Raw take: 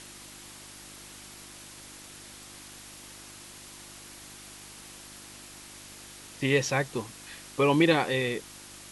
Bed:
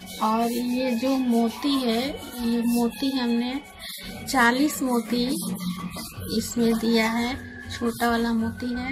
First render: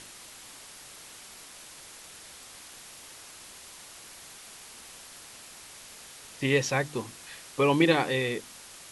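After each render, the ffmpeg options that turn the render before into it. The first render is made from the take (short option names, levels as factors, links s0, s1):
-af "bandreject=f=50:t=h:w=4,bandreject=f=100:t=h:w=4,bandreject=f=150:t=h:w=4,bandreject=f=200:t=h:w=4,bandreject=f=250:t=h:w=4,bandreject=f=300:t=h:w=4,bandreject=f=350:t=h:w=4"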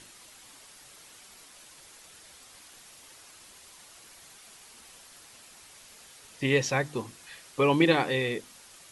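-af "afftdn=nr=6:nf=-48"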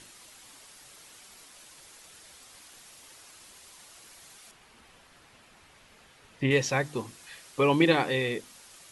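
-filter_complex "[0:a]asettb=1/sr,asplit=3[s0][s1][s2];[s0]atrim=end=4.514[s3];[s1]atrim=start=4.51:end=6.51,asetpts=PTS-STARTPTS,afade=t=in:d=0.004:c=qsin,afade=t=out:st=1.996:d=0.004:c=qsin,bass=f=250:g=4,treble=f=4000:g=-13[s4];[s2]atrim=start=6.506[s5];[s3][s4]acrossfade=d=0.004:c1=hsin:c2=qsin[s6];[s6][s5]acrossfade=d=0.004:c1=qsin:c2=hsin"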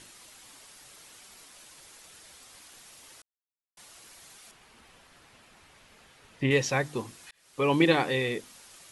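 -filter_complex "[0:a]asplit=4[s0][s1][s2][s3];[s0]atrim=end=3.22,asetpts=PTS-STARTPTS,afade=t=out:st=3.216:d=0.004:c=hsin[s4];[s1]atrim=start=3.22:end=3.77,asetpts=PTS-STARTPTS,volume=0[s5];[s2]atrim=start=3.77:end=7.31,asetpts=PTS-STARTPTS,afade=t=in:d=0.004:c=hsin,afade=t=out:st=3.536:d=0.004:c=hsin[s6];[s3]atrim=start=7.31,asetpts=PTS-STARTPTS,afade=t=in:d=0.45[s7];[s4][s5][s6][s7]concat=n=4:v=0:a=1"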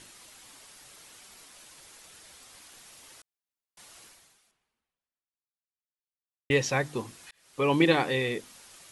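-filter_complex "[0:a]asplit=2[s0][s1];[s0]atrim=end=6.5,asetpts=PTS-STARTPTS,afade=t=out:st=4.04:d=2.46:c=exp[s2];[s1]atrim=start=6.5,asetpts=PTS-STARTPTS,afade=t=in:d=0.004:c=hsin[s3];[s2][s3]concat=n=2:v=0:a=1"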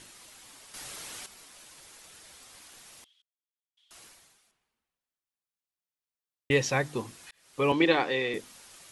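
-filter_complex "[0:a]asettb=1/sr,asplit=3[s0][s1][s2];[s0]atrim=end=3.044[s3];[s1]atrim=start=3.04:end=3.91,asetpts=PTS-STARTPTS,afade=t=in:d=0.004:c=qsin,afade=t=out:st=0.866:d=0.004:c=qsin,bandpass=f=3300:t=q:w=15[s4];[s2]atrim=start=3.906[s5];[s3][s4]acrossfade=d=0.004:c1=hsin:c2=qsin[s6];[s6][s5]acrossfade=d=0.004:c1=qsin:c2=hsin,asettb=1/sr,asplit=3[s7][s8][s9];[s7]atrim=end=7.724[s10];[s8]atrim=start=7.72:end=8.34,asetpts=PTS-STARTPTS,afade=t=in:d=0.004:c=qsin,afade=t=out:st=0.616:d=0.004:c=qsin,acrossover=split=240 6500:gain=0.251 1 0.112[s11][s12][s13];[s11][s12][s13]amix=inputs=3:normalize=0[s14];[s9]atrim=start=8.336[s15];[s10][s14]acrossfade=d=0.004:c1=hsin:c2=qsin[s16];[s16][s15]acrossfade=d=0.004:c1=qsin:c2=hsin,asplit=3[s17][s18][s19];[s17]atrim=end=0.742[s20];[s18]atrim=start=0.738:end=1.262,asetpts=PTS-STARTPTS,volume=2.99[s21];[s19]atrim=start=1.258[s22];[s20][s21]acrossfade=d=0.004:c1=hsin:c2=hsin[s23];[s23][s22]acrossfade=d=0.004:c1=hsin:c2=hsin"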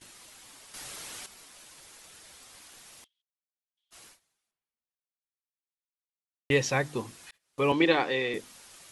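-af "agate=range=0.141:threshold=0.002:ratio=16:detection=peak"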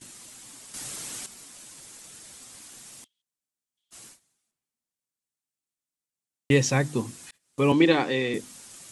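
-af "equalizer=f=125:t=o:w=1:g=7,equalizer=f=250:t=o:w=1:g=8,equalizer=f=8000:t=o:w=1:g=9"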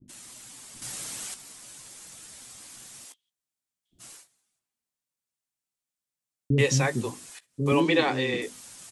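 -filter_complex "[0:a]asplit=2[s0][s1];[s1]adelay=16,volume=0.251[s2];[s0][s2]amix=inputs=2:normalize=0,acrossover=split=340[s3][s4];[s4]adelay=80[s5];[s3][s5]amix=inputs=2:normalize=0"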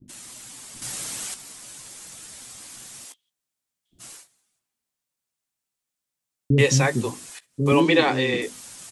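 -af "volume=1.68"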